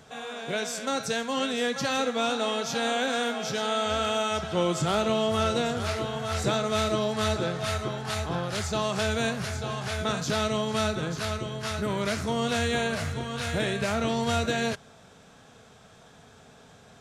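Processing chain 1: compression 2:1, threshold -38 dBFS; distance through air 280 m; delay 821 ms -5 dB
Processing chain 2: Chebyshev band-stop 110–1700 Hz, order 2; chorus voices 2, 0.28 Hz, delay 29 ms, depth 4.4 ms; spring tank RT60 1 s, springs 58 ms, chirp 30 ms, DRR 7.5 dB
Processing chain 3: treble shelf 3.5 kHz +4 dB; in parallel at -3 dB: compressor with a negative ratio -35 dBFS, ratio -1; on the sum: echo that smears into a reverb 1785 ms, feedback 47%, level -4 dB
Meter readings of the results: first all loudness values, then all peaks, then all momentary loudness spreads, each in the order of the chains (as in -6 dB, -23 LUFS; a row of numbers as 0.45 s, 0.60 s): -36.0 LUFS, -35.0 LUFS, -24.0 LUFS; -22.5 dBFS, -19.5 dBFS, -9.5 dBFS; 6 LU, 5 LU, 5 LU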